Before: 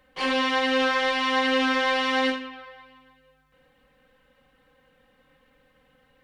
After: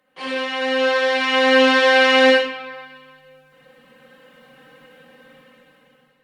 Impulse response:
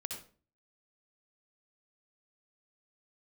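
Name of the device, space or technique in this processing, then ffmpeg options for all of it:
far-field microphone of a smart speaker: -filter_complex "[1:a]atrim=start_sample=2205[link_01];[0:a][link_01]afir=irnorm=-1:irlink=0,highpass=frequency=150:width=0.5412,highpass=frequency=150:width=1.3066,dynaudnorm=framelen=540:gausssize=5:maxgain=15.5dB" -ar 48000 -c:a libopus -b:a 32k

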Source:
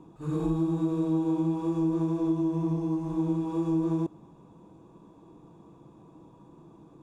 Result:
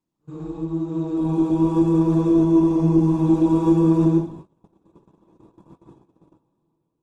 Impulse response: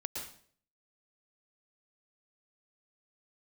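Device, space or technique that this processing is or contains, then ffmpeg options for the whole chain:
speakerphone in a meeting room: -filter_complex "[1:a]atrim=start_sample=2205[link_01];[0:a][link_01]afir=irnorm=-1:irlink=0,dynaudnorm=framelen=350:gausssize=7:maxgain=16dB,agate=range=-25dB:threshold=-33dB:ratio=16:detection=peak,volume=-4.5dB" -ar 48000 -c:a libopus -b:a 16k

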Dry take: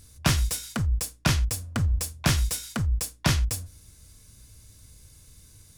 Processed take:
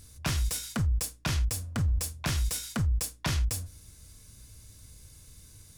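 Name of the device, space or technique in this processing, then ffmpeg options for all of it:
clipper into limiter: -af "asoftclip=type=hard:threshold=-13.5dB,alimiter=limit=-21.5dB:level=0:latency=1:release=13"

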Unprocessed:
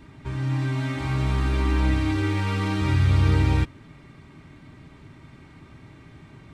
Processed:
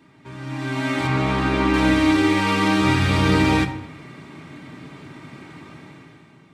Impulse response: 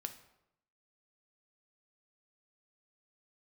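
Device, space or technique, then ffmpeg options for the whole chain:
far laptop microphone: -filter_complex "[1:a]atrim=start_sample=2205[link_01];[0:a][link_01]afir=irnorm=-1:irlink=0,highpass=180,dynaudnorm=framelen=110:gausssize=13:maxgain=12.5dB,asettb=1/sr,asplit=3[link_02][link_03][link_04];[link_02]atrim=end=1.074[link_05];[link_03]atrim=start=1.07:end=1.74,asetpts=PTS-STARTPTS,afade=type=in:duration=0.004:curve=qsin,afade=type=out:start_time=0.666:duration=0.004:curve=qsin,lowpass=frequency=3400:poles=1[link_06];[link_04]atrim=start=1.736[link_07];[link_05][link_06]acrossfade=duration=0.004:curve1=hsin:curve2=qsin[link_08];[link_08][link_07]acrossfade=duration=0.004:curve1=qsin:curve2=hsin"

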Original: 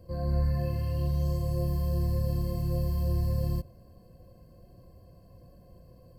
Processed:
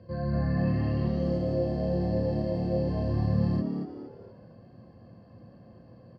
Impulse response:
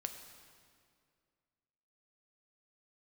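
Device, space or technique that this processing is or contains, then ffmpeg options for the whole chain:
frequency-shifting delay pedal into a guitar cabinet: -filter_complex "[0:a]asettb=1/sr,asplit=3[link_01][link_02][link_03];[link_01]atrim=end=1.084[link_04];[link_02]atrim=start=1.08:end=2.89,asetpts=PTS-STARTPTS,afade=type=in:duration=0.004:curve=qsin,afade=type=out:start_time=1.806:duration=0.004:curve=qsin,equalizer=frequency=125:width_type=o:width=1:gain=-6,equalizer=frequency=500:width_type=o:width=1:gain=10,equalizer=frequency=1000:width_type=o:width=1:gain=-11[link_05];[link_03]atrim=start=2.886[link_06];[link_04][link_05]acrossfade=duration=0.004:curve1=hsin:curve2=qsin[link_07];[link_07][link_06]acrossfade=duration=0.004:curve1=qsin:curve2=hsin,asplit=5[link_08][link_09][link_10][link_11][link_12];[link_09]adelay=231,afreqshift=110,volume=-8dB[link_13];[link_10]adelay=462,afreqshift=220,volume=-16.2dB[link_14];[link_11]adelay=693,afreqshift=330,volume=-24.4dB[link_15];[link_12]adelay=924,afreqshift=440,volume=-32.5dB[link_16];[link_08][link_13][link_14][link_15][link_16]amix=inputs=5:normalize=0,highpass=110,equalizer=frequency=110:width_type=q:width=4:gain=7,equalizer=frequency=220:width_type=q:width=4:gain=6,equalizer=frequency=1700:width_type=q:width=4:gain=9,lowpass=frequency=4500:width=0.5412,lowpass=frequency=4500:width=1.3066,volume=1.5dB"

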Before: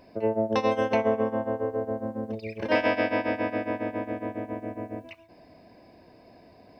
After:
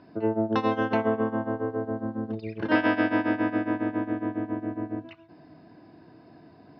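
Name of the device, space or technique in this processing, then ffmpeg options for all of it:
guitar cabinet: -af "highpass=87,equalizer=frequency=110:width_type=q:width=4:gain=3,equalizer=frequency=150:width_type=q:width=4:gain=9,equalizer=frequency=310:width_type=q:width=4:gain=8,equalizer=frequency=550:width_type=q:width=4:gain=-9,equalizer=frequency=1400:width_type=q:width=4:gain=9,equalizer=frequency=2300:width_type=q:width=4:gain=-8,lowpass=frequency=4400:width=0.5412,lowpass=frequency=4400:width=1.3066"

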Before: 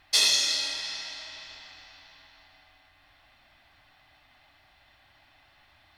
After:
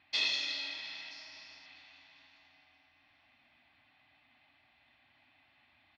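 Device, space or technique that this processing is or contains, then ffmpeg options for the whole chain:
frequency-shifting delay pedal into a guitar cabinet: -filter_complex "[0:a]asettb=1/sr,asplit=3[link_01][link_02][link_03];[link_01]atrim=end=1.114[link_04];[link_02]atrim=start=1.11:end=1.66,asetpts=PTS-STARTPTS,afade=type=in:duration=0.004:curve=qsin,afade=type=out:start_time=0.546:duration=0.004:curve=qsin,highshelf=frequency=4400:width_type=q:width=3:gain=6[link_05];[link_03]atrim=start=1.656[link_06];[link_04][link_05]acrossfade=duration=0.004:curve1=hsin:curve2=qsin[link_07];[link_07][link_06]acrossfade=duration=0.004:curve1=qsin:curve2=hsin,asplit=6[link_08][link_09][link_10][link_11][link_12][link_13];[link_09]adelay=405,afreqshift=39,volume=-23.5dB[link_14];[link_10]adelay=810,afreqshift=78,volume=-27.5dB[link_15];[link_11]adelay=1215,afreqshift=117,volume=-31.5dB[link_16];[link_12]adelay=1620,afreqshift=156,volume=-35.5dB[link_17];[link_13]adelay=2025,afreqshift=195,volume=-39.6dB[link_18];[link_08][link_14][link_15][link_16][link_17][link_18]amix=inputs=6:normalize=0,highpass=94,equalizer=frequency=250:width_type=q:width=4:gain=9,equalizer=frequency=480:width_type=q:width=4:gain=-6,equalizer=frequency=1400:width_type=q:width=4:gain=-3,equalizer=frequency=2400:width_type=q:width=4:gain=7,lowpass=frequency=4300:width=0.5412,lowpass=frequency=4300:width=1.3066,volume=-8.5dB"

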